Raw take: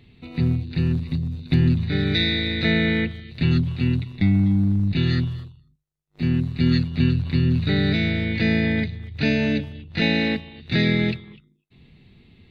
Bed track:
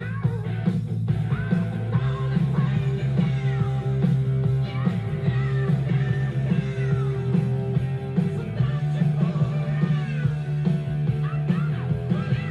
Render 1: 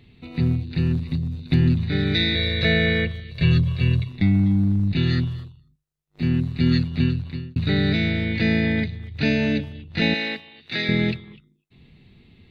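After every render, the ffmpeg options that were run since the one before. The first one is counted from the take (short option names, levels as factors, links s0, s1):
-filter_complex "[0:a]asettb=1/sr,asplit=3[s0][s1][s2];[s0]atrim=end=2.354[s3];[s1]atrim=start=2.35:end=4.09,asetpts=PTS-STARTPTS,afade=t=in:d=0.004:c=qsin,afade=t=out:st=1.736:d=0.004:c=qsin,aecho=1:1:1.8:0.84,atrim=end_sample=76734[s4];[s2]atrim=start=4.086[s5];[s3][s4]acrossfade=d=0.004:c1=hsin:c2=qsin[s6];[s6][s5]acrossfade=d=0.004:c1=qsin:c2=hsin,asettb=1/sr,asplit=3[s7][s8][s9];[s7]atrim=end=10.144[s10];[s8]atrim=start=10.14:end=10.89,asetpts=PTS-STARTPTS,afade=t=in:d=0.004:c=qsin,afade=t=out:st=0.746:d=0.004:c=qsin,highpass=f=810:p=1[s11];[s9]atrim=start=10.886[s12];[s10][s11]acrossfade=d=0.004:c1=hsin:c2=qsin[s13];[s13][s12]acrossfade=d=0.004:c1=qsin:c2=hsin,asplit=2[s14][s15];[s14]atrim=end=7.56,asetpts=PTS-STARTPTS,afade=t=out:st=6.96:d=0.6[s16];[s15]atrim=start=7.56,asetpts=PTS-STARTPTS,afade=t=in:d=0.004:c=hsin[s17];[s16][s17]concat=n=2:v=0:a=1"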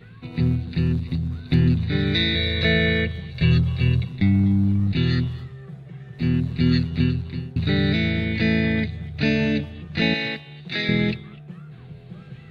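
-filter_complex "[1:a]volume=0.15[s0];[0:a][s0]amix=inputs=2:normalize=0"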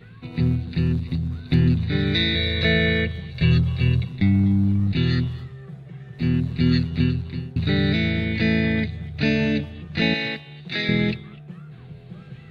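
-af anull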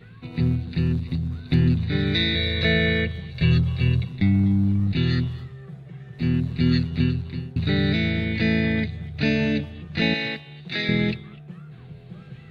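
-af "volume=0.891"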